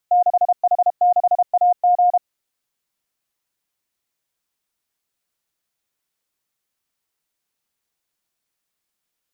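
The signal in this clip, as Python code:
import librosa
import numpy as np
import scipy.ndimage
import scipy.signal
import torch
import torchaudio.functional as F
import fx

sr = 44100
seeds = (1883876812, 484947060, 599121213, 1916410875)

y = fx.morse(sr, text='6H6AG', wpm=32, hz=714.0, level_db=-11.0)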